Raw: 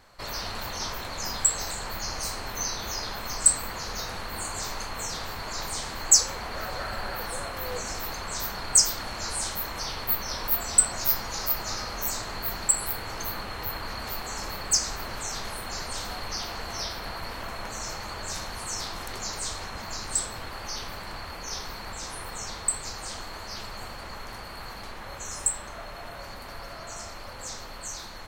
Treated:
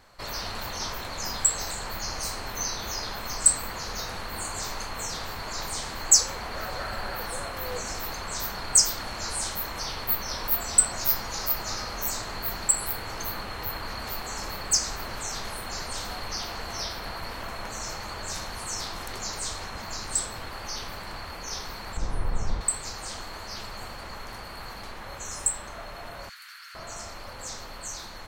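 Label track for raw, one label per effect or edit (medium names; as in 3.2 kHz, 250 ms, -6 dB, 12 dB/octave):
21.970000	22.610000	tilt EQ -3.5 dB/octave
26.290000	26.750000	Chebyshev high-pass 1.4 kHz, order 4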